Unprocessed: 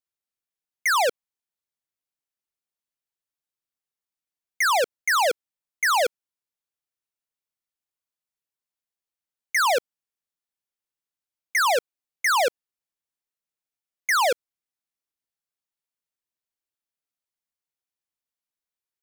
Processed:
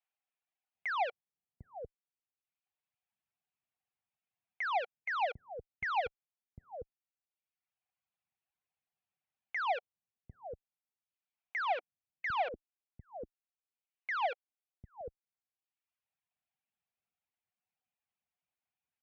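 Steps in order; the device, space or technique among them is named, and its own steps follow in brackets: reverb removal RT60 1.1 s; 11.64–14.26 s: Chebyshev band-pass 310–3200 Hz, order 3; guitar amplifier (valve stage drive 41 dB, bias 0.8; tone controls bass +7 dB, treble -4 dB; cabinet simulation 79–3400 Hz, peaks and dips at 300 Hz -8 dB, 750 Hz +10 dB, 2.5 kHz +5 dB); bands offset in time highs, lows 750 ms, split 480 Hz; trim +6.5 dB

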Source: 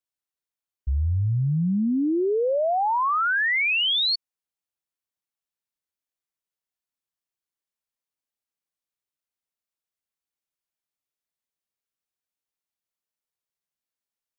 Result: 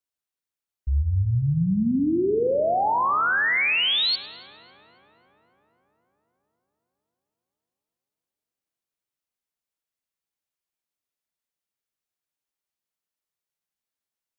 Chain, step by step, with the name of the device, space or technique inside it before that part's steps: dub delay into a spring reverb (filtered feedback delay 275 ms, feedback 71%, low-pass 2.3 kHz, level -19.5 dB; spring tank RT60 1.1 s, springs 43 ms, chirp 60 ms, DRR 8.5 dB)

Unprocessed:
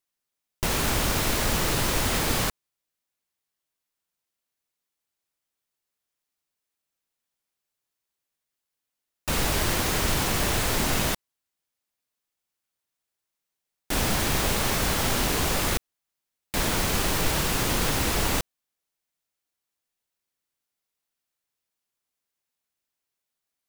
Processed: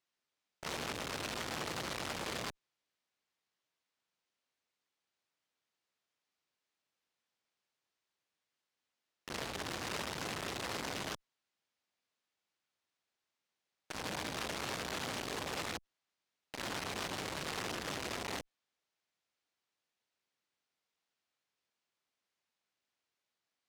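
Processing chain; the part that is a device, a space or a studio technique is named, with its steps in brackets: valve radio (band-pass 83–5100 Hz; valve stage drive 35 dB, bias 0.25; transformer saturation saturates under 520 Hz); bass shelf 200 Hz -4 dB; trim +2 dB

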